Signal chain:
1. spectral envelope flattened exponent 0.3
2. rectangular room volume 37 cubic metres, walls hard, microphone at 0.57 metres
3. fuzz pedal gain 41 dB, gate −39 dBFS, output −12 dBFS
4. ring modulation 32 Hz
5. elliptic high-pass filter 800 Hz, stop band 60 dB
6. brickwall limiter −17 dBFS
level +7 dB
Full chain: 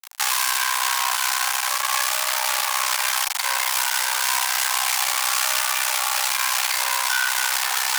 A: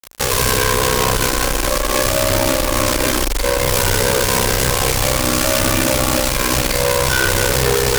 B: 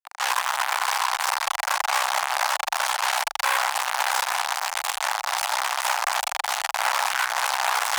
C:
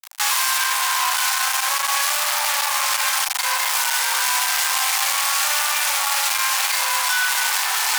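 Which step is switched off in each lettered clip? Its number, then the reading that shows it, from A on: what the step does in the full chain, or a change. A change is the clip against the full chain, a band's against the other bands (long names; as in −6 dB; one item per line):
5, 500 Hz band +20.5 dB
1, 500 Hz band +7.5 dB
4, change in crest factor −2.0 dB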